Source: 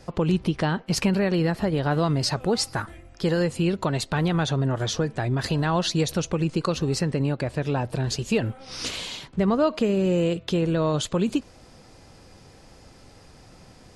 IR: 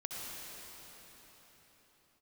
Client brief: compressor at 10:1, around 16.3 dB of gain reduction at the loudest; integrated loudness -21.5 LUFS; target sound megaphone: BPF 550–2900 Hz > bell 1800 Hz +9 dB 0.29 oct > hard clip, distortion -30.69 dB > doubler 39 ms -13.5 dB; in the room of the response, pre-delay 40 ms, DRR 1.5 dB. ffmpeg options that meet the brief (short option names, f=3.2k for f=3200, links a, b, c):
-filter_complex "[0:a]acompressor=threshold=-35dB:ratio=10,asplit=2[a][b];[1:a]atrim=start_sample=2205,adelay=40[c];[b][c]afir=irnorm=-1:irlink=0,volume=-3dB[d];[a][d]amix=inputs=2:normalize=0,highpass=550,lowpass=2.9k,equalizer=f=1.8k:t=o:w=0.29:g=9,asoftclip=type=hard:threshold=-30dB,asplit=2[e][f];[f]adelay=39,volume=-13.5dB[g];[e][g]amix=inputs=2:normalize=0,volume=21.5dB"